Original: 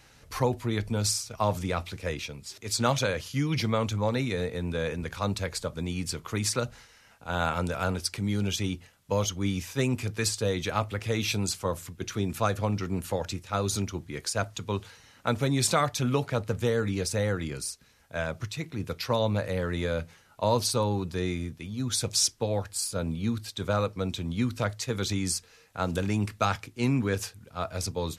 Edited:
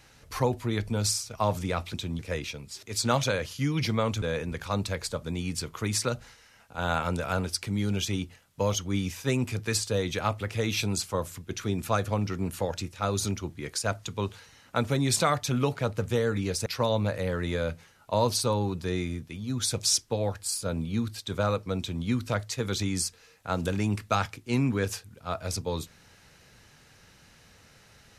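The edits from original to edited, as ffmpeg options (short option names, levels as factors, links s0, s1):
-filter_complex "[0:a]asplit=5[s0][s1][s2][s3][s4];[s0]atrim=end=1.942[s5];[s1]atrim=start=24.088:end=24.342[s6];[s2]atrim=start=1.938:end=3.972[s7];[s3]atrim=start=4.728:end=17.172[s8];[s4]atrim=start=18.958[s9];[s5][s6]acrossfade=d=0.004:c1=hsin:c2=hsin[s10];[s10][s7]acrossfade=d=0.004:c1=hsin:c2=hsin[s11];[s11][s8]acrossfade=d=0.004:c1=hsin:c2=hsin[s12];[s12][s9]acrossfade=d=0.004:c1=hsin:c2=hsin"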